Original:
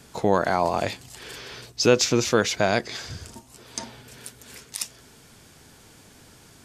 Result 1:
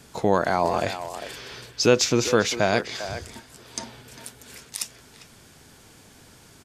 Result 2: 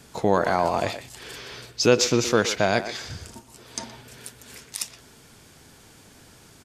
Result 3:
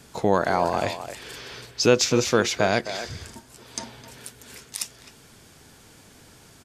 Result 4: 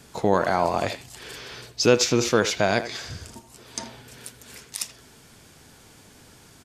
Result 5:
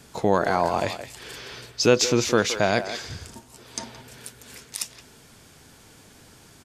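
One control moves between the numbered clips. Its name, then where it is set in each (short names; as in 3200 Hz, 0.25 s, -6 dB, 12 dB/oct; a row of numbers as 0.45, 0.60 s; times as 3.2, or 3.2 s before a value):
speakerphone echo, time: 400, 120, 260, 80, 170 ms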